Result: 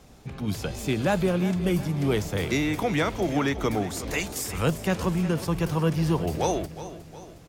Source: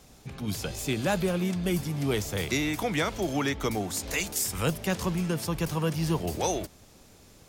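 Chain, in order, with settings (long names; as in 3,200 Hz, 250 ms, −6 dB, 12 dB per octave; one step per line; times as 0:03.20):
high-shelf EQ 3,200 Hz −8 dB
on a send: repeating echo 362 ms, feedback 50%, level −14 dB
on the sum: level +3.5 dB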